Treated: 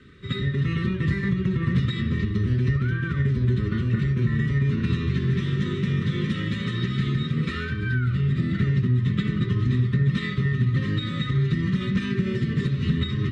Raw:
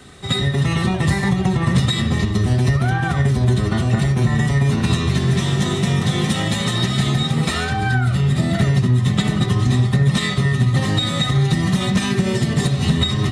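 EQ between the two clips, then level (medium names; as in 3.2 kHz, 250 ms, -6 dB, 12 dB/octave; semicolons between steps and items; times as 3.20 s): Butterworth band-stop 760 Hz, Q 0.86; low-pass 2.5 kHz 12 dB/octave; -5.5 dB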